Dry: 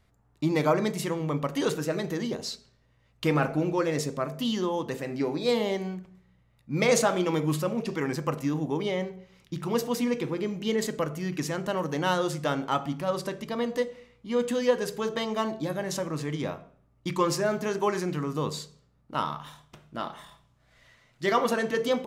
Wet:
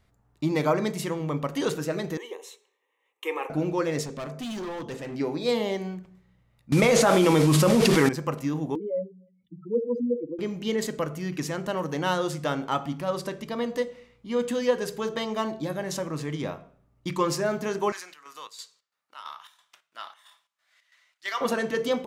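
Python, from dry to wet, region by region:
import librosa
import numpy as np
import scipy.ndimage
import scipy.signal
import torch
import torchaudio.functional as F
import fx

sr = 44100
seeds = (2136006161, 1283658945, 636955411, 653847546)

y = fx.chain(x, sr, fx.highpass(hz=420.0, slope=24),
    fx.fixed_phaser(hz=970.0, stages=8), at=(2.17, 3.5))
y = fx.chain(y, sr, fx.lowpass(hz=9000.0, slope=12),
    fx.clip_hard(threshold_db=-31.5), at=(4.03, 5.15))
y = fx.chain(y, sr, fx.delta_mod(bps=64000, step_db=-35.0),
    fx.env_flatten(amount_pct=100), at=(6.72, 8.09))
y = fx.chain(y, sr, fx.spec_expand(power=3.8),
    fx.highpass(hz=270.0, slope=12),
    fx.comb(ms=4.0, depth=0.66), at=(8.75, 10.39))
y = fx.chain(y, sr, fx.highpass(hz=1400.0, slope=12),
    fx.chopper(hz=3.0, depth_pct=65, duty_pct=65), at=(17.92, 21.41))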